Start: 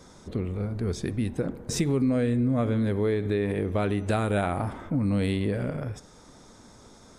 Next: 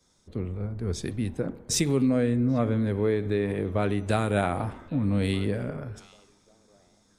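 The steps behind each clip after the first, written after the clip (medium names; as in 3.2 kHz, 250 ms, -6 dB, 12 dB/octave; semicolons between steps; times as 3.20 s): repeats whose band climbs or falls 790 ms, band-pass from 3.2 kHz, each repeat -1.4 oct, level -12 dB; three bands expanded up and down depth 70%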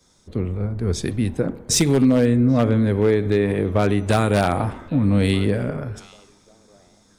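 wavefolder -16 dBFS; trim +7.5 dB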